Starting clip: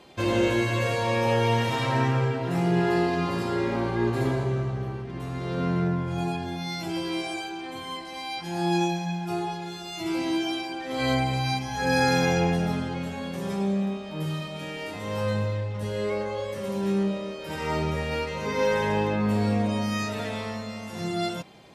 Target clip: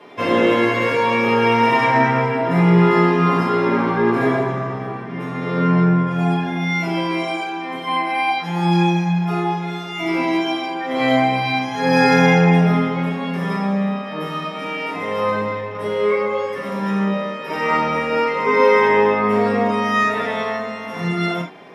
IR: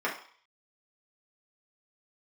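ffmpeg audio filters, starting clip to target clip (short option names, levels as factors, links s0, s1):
-filter_complex "[0:a]asettb=1/sr,asplit=3[s0][s1][s2];[s0]atrim=end=7.874[s3];[s1]atrim=start=7.87:end=8.3,asetpts=PTS-STARTPTS,afade=t=in:d=0.004:c=qsin,afade=t=out:st=0.426:d=0.004:c=qsin,equalizer=f=315:t=o:w=0.33:g=8,equalizer=f=800:t=o:w=0.33:g=11,equalizer=f=1600:t=o:w=0.33:g=5,equalizer=f=2500:t=o:w=0.33:g=11,equalizer=f=6300:t=o:w=0.33:g=-11,equalizer=f=10000:t=o:w=0.33:g=10[s4];[s2]atrim=start=8.296[s5];[s3][s4]acrossfade=d=0.004:c1=hsin:c2=qsin[s6];[s6][s5]acrossfade=d=0.004:c1=qsin:c2=hsin[s7];[1:a]atrim=start_sample=2205,afade=t=out:st=0.14:d=0.01,atrim=end_sample=6615[s8];[s7][s8]afir=irnorm=-1:irlink=0,volume=1.26"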